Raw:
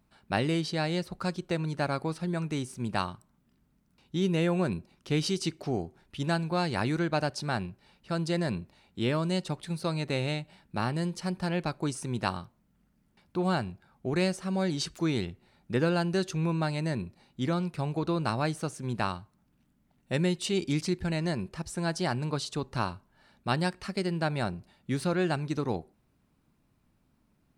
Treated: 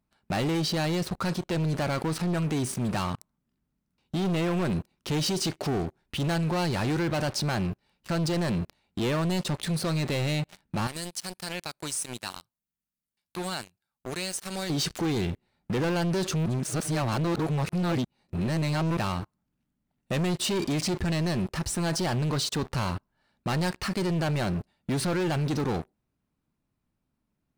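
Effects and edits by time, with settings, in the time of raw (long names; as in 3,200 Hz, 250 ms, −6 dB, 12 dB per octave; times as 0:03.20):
0:10.87–0:14.70: first-order pre-emphasis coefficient 0.9
0:16.46–0:18.97: reverse
whole clip: leveller curve on the samples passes 5; brickwall limiter −23.5 dBFS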